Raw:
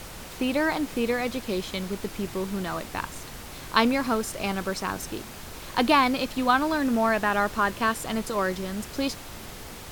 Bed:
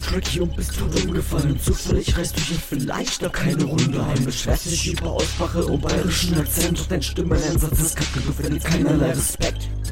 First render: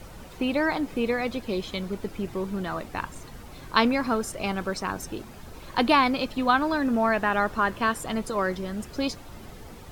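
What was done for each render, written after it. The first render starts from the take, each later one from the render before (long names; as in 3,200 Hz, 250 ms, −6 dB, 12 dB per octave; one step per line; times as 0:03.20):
broadband denoise 10 dB, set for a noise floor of −41 dBFS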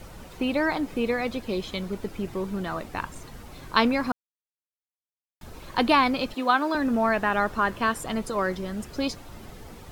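0:04.12–0:05.41: silence
0:06.34–0:06.75: high-pass filter 260 Hz 24 dB per octave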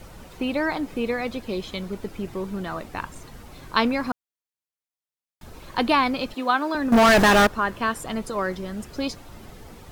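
0:06.92–0:07.47: leveller curve on the samples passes 5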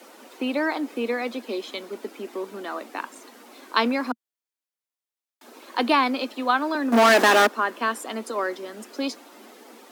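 Butterworth high-pass 230 Hz 72 dB per octave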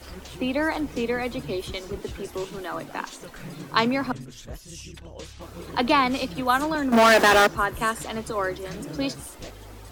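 mix in bed −18.5 dB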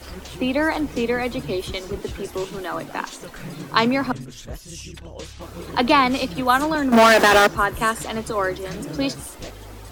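level +4 dB
brickwall limiter −3 dBFS, peak gain reduction 2.5 dB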